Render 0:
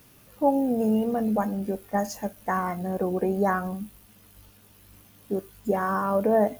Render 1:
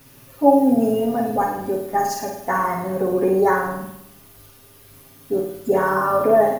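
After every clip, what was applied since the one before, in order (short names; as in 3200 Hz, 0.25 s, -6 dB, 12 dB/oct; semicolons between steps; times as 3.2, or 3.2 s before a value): comb 7.4 ms, depth 100%; on a send: flutter echo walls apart 9 m, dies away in 0.75 s; on the sum: gain +2.5 dB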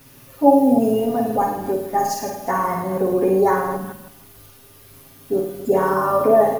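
reverse delay 0.157 s, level -12.5 dB; dynamic EQ 1600 Hz, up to -6 dB, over -39 dBFS, Q 2.5; gain +1 dB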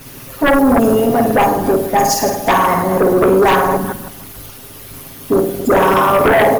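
harmonic-percussive split harmonic -10 dB; sine folder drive 11 dB, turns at -9.5 dBFS; gain +2.5 dB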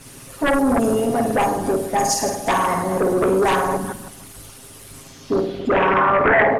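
low-pass sweep 9100 Hz -> 1900 Hz, 4.93–6.02; gain -6.5 dB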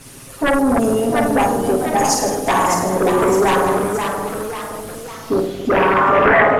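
echoes that change speed 0.726 s, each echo +1 st, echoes 3, each echo -6 dB; gain +2 dB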